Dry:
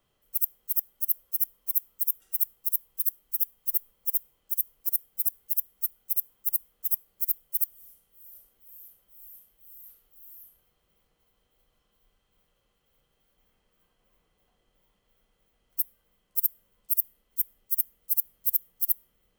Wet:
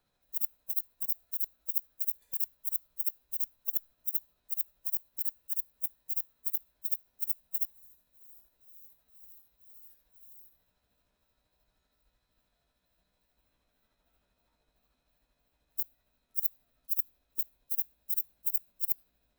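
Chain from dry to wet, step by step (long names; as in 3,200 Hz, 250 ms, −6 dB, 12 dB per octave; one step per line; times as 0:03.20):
pitch shift by two crossfaded delay taps +4 semitones
hum removal 271.8 Hz, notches 18
level −3 dB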